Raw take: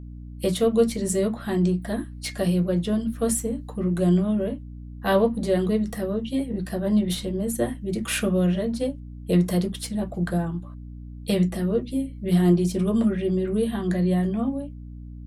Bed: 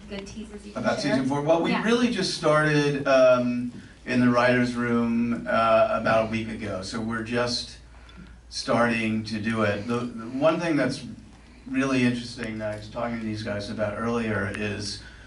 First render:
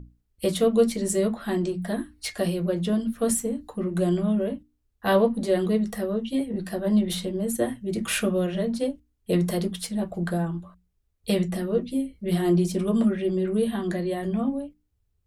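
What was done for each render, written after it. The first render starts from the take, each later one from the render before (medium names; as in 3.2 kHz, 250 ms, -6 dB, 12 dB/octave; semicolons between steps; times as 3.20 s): hum notches 60/120/180/240/300 Hz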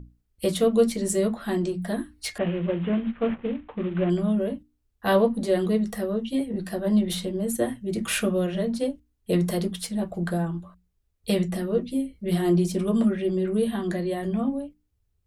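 2.38–4.10 s: CVSD coder 16 kbps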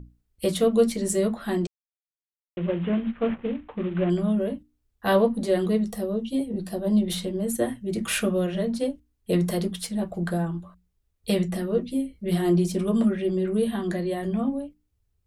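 1.67–2.57 s: mute; 5.85–7.08 s: peaking EQ 1.7 kHz -9 dB 1.1 oct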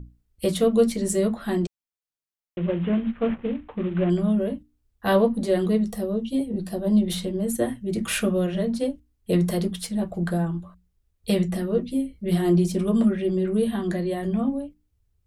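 bass shelf 200 Hz +4 dB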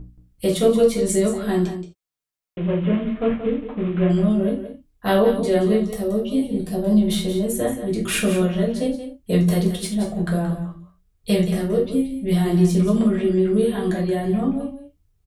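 on a send: delay 177 ms -10.5 dB; on the sum: gated-style reverb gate 110 ms falling, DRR -1.5 dB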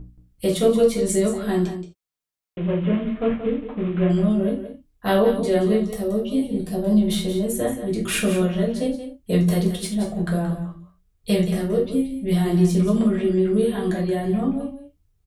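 trim -1 dB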